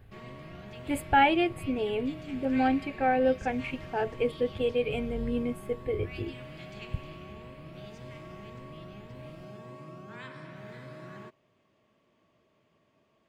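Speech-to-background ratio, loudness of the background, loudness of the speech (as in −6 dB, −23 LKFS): 16.0 dB, −45.0 LKFS, −29.0 LKFS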